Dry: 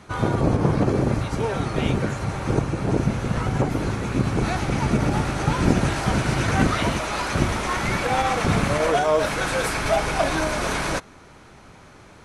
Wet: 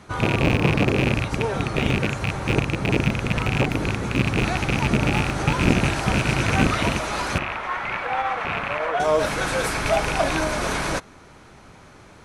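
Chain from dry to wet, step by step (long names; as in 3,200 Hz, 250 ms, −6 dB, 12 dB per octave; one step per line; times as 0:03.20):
loose part that buzzes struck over −22 dBFS, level −12 dBFS
0:07.38–0:09.00: three-way crossover with the lows and the highs turned down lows −15 dB, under 590 Hz, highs −22 dB, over 2,900 Hz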